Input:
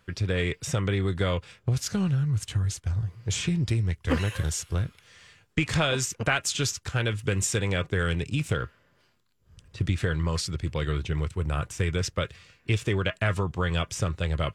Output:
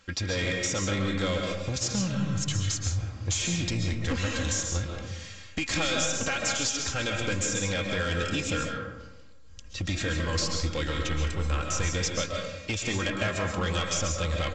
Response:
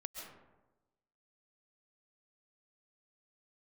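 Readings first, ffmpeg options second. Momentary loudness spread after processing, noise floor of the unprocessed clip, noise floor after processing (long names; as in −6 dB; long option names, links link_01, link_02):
6 LU, −65 dBFS, −46 dBFS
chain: -filter_complex "[0:a]aemphasis=mode=production:type=75fm,aecho=1:1:3.7:0.66,acompressor=threshold=-24dB:ratio=6,aresample=16000,asoftclip=type=tanh:threshold=-25.5dB,aresample=44100[link_01];[1:a]atrim=start_sample=2205,asetrate=43659,aresample=44100[link_02];[link_01][link_02]afir=irnorm=-1:irlink=0,volume=6.5dB"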